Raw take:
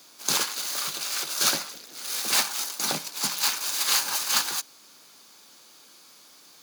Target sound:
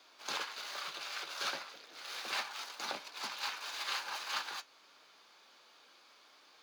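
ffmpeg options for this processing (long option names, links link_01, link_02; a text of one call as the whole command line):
ffmpeg -i in.wav -filter_complex "[0:a]acrossover=split=400 4100:gain=0.2 1 0.0891[link_01][link_02][link_03];[link_01][link_02][link_03]amix=inputs=3:normalize=0,flanger=delay=2.7:depth=5:regen=-70:speed=0.32:shape=triangular,acompressor=threshold=-44dB:ratio=1.5,volume=1dB" out.wav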